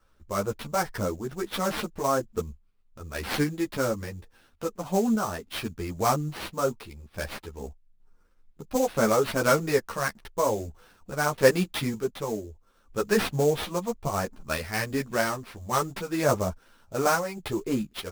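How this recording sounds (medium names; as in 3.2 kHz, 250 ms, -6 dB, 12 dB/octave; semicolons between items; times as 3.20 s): random-step tremolo; aliases and images of a low sample rate 7.1 kHz, jitter 20%; a shimmering, thickened sound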